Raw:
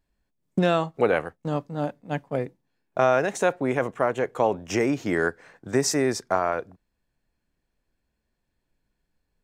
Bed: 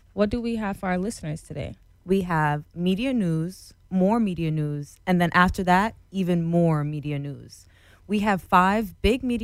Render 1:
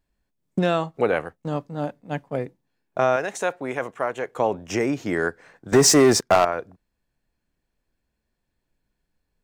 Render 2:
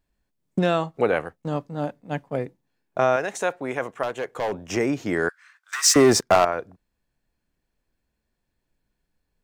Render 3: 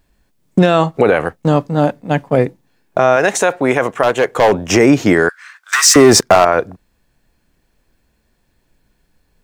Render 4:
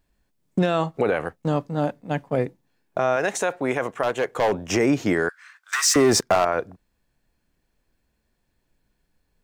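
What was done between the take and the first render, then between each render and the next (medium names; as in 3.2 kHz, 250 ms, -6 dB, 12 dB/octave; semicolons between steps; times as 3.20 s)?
3.16–4.36 s: bass shelf 380 Hz -9 dB; 5.72–6.45 s: waveshaping leveller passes 3
4.03–4.77 s: hard clipper -21.5 dBFS; 5.29–5.96 s: Chebyshev high-pass 1.2 kHz, order 4
loudness maximiser +15.5 dB
trim -10 dB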